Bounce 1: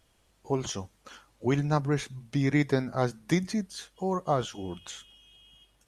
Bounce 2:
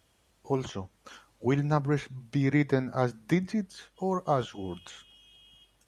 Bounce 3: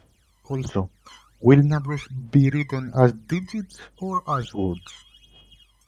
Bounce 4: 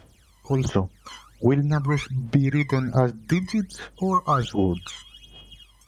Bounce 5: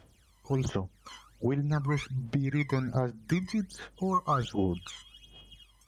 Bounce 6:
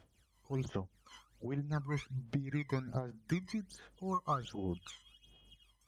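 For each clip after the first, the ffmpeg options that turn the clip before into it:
-filter_complex "[0:a]highpass=50,acrossover=split=3000[a][b];[b]acompressor=threshold=-51dB:ratio=6[c];[a][c]amix=inputs=2:normalize=0"
-af "aphaser=in_gain=1:out_gain=1:delay=1:decay=0.79:speed=1.3:type=sinusoidal"
-af "acompressor=threshold=-21dB:ratio=12,volume=5.5dB"
-af "alimiter=limit=-10.5dB:level=0:latency=1:release=254,volume=-6.5dB"
-af "tremolo=f=5.1:d=0.61,volume=-6dB"

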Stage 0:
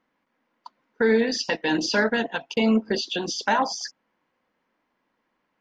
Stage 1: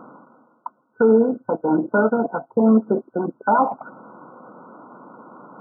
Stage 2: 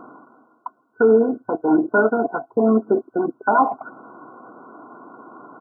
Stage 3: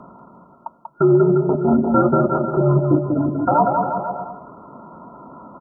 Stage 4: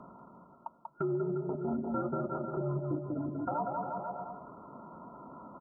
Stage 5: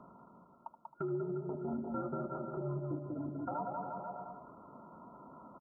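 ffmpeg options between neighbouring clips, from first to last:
-af "afftfilt=real='re*between(b*sr/4096,110,1500)':imag='im*between(b*sr/4096,110,1500)':win_size=4096:overlap=0.75,areverse,acompressor=mode=upward:threshold=-26dB:ratio=2.5,areverse,volume=5.5dB"
-af "aecho=1:1:2.8:0.55"
-filter_complex "[0:a]asplit=2[a][b];[b]aecho=0:1:190|351.5|488.8|605.5|704.6:0.631|0.398|0.251|0.158|0.1[c];[a][c]amix=inputs=2:normalize=0,afreqshift=-80"
-af "acompressor=threshold=-29dB:ratio=2,volume=-9dB"
-af "aecho=1:1:77:0.224,volume=-5dB"

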